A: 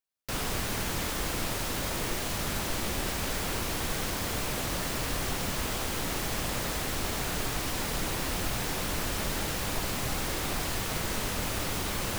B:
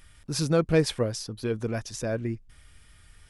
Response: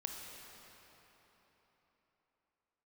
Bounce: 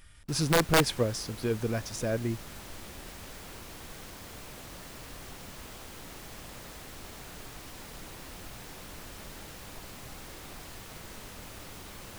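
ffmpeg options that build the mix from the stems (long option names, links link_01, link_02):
-filter_complex "[0:a]volume=-13.5dB[link_01];[1:a]volume=-1dB[link_02];[link_01][link_02]amix=inputs=2:normalize=0,aeval=exprs='(mod(5.31*val(0)+1,2)-1)/5.31':channel_layout=same"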